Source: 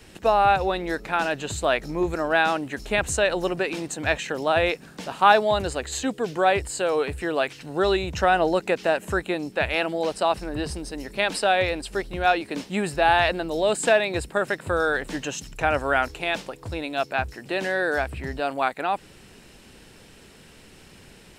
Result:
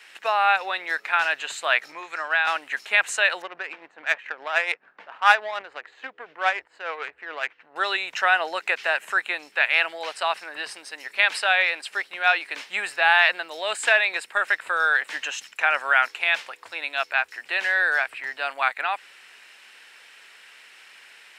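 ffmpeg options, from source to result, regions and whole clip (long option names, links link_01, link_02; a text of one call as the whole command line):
ffmpeg -i in.wav -filter_complex "[0:a]asettb=1/sr,asplit=3[link_01][link_02][link_03];[link_01]atrim=end=1.924[link_04];[link_02]atrim=start=1.92:end=2.47,asetpts=PTS-STARTPTS,afade=type=in:duration=0.004:curve=qsin,afade=type=out:start_time=0.546:duration=0.004:curve=qsin,lowpass=8300,acrossover=split=920|5100[link_05][link_06][link_07];[link_05]acompressor=threshold=-28dB:ratio=4[link_08];[link_06]acompressor=threshold=-25dB:ratio=4[link_09];[link_07]acompressor=threshold=-50dB:ratio=4[link_10];[link_08][link_09][link_10]amix=inputs=3:normalize=0[link_11];[link_03]atrim=start=2.466[link_12];[link_04][link_11]acrossfade=duration=0.004:curve1=hsin:curve2=qsin[link_13];[link_13][link_12]acrossfade=duration=0.004:curve1=qsin:curve2=hsin,asettb=1/sr,asplit=3[link_14][link_15][link_16];[link_14]atrim=end=3.424[link_17];[link_15]atrim=start=3.42:end=7.76,asetpts=PTS-STARTPTS,afade=type=in:duration=0.004:curve=qsin,afade=type=out:start_time=4.336:duration=0.004:curve=qsin,tremolo=f=6.9:d=0.53,adynamicsmooth=sensitivity=1.5:basefreq=1000[link_18];[link_16]atrim=start=7.756[link_19];[link_17][link_18]acrossfade=duration=0.004:curve1=hsin:curve2=qsin[link_20];[link_20][link_19]acrossfade=duration=0.004:curve1=qsin:curve2=hsin,highpass=800,equalizer=frequency=2000:width_type=o:width=1.9:gain=12.5,volume=-4.5dB" out.wav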